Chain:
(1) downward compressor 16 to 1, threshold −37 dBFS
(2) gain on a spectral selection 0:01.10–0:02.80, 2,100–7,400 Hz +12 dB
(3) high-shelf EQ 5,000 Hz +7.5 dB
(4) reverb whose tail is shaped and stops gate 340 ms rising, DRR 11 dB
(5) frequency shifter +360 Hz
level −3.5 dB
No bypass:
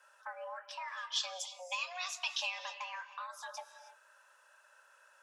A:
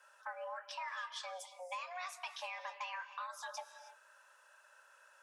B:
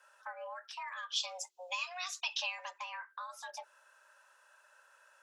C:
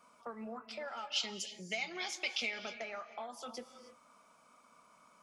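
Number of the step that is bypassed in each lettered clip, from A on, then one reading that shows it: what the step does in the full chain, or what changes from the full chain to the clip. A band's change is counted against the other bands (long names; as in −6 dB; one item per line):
2, 4 kHz band −8.5 dB
4, change in momentary loudness spread −2 LU
5, 500 Hz band +5.0 dB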